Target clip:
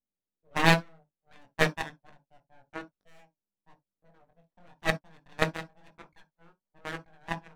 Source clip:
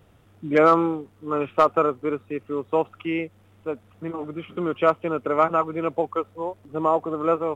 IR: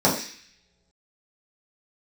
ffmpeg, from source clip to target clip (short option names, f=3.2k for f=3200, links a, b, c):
-filter_complex "[0:a]adynamicsmooth=sensitivity=6:basefreq=1k,aeval=exprs='abs(val(0))':c=same,flanger=delay=20:depth=4.3:speed=1,aeval=exprs='0.422*(cos(1*acos(clip(val(0)/0.422,-1,1)))-cos(1*PI/2))+0.133*(cos(3*acos(clip(val(0)/0.422,-1,1)))-cos(3*PI/2))+0.0335*(cos(4*acos(clip(val(0)/0.422,-1,1)))-cos(4*PI/2))+0.00266*(cos(6*acos(clip(val(0)/0.422,-1,1)))-cos(6*PI/2))+0.00266*(cos(7*acos(clip(val(0)/0.422,-1,1)))-cos(7*PI/2))':c=same,asplit=2[a][b];[1:a]atrim=start_sample=2205,atrim=end_sample=3087[c];[b][c]afir=irnorm=-1:irlink=0,volume=-26.5dB[d];[a][d]amix=inputs=2:normalize=0,volume=4dB"